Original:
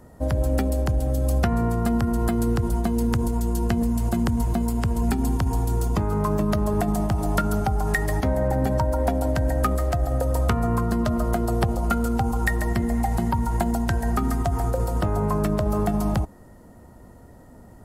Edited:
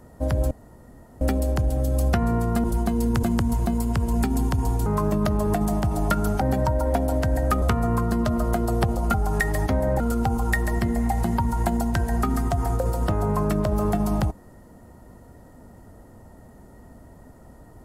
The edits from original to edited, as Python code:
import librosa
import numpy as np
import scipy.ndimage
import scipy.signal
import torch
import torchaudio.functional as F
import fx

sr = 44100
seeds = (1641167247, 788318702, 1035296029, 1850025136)

y = fx.edit(x, sr, fx.insert_room_tone(at_s=0.51, length_s=0.7),
    fx.cut(start_s=1.94, length_s=0.68),
    fx.cut(start_s=3.21, length_s=0.9),
    fx.cut(start_s=5.74, length_s=0.39),
    fx.move(start_s=7.68, length_s=0.86, to_s=11.94),
    fx.cut(start_s=9.75, length_s=0.67), tone=tone)